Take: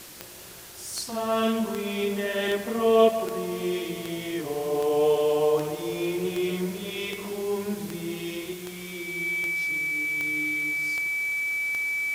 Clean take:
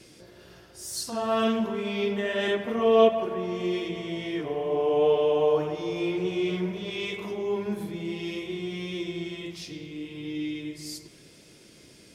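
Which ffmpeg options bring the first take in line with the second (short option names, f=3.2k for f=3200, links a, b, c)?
-af "adeclick=t=4,bandreject=f=2.3k:w=30,afwtdn=0.0063,asetnsamples=n=441:p=0,asendcmd='8.53 volume volume 5.5dB',volume=0dB"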